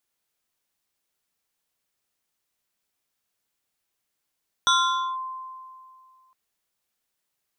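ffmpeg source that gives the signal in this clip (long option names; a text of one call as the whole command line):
ffmpeg -f lavfi -i "aevalsrc='0.178*pow(10,-3*t/2.28)*sin(2*PI*1040*t+1.6*clip(1-t/0.5,0,1)*sin(2*PI*2.33*1040*t))':duration=1.66:sample_rate=44100" out.wav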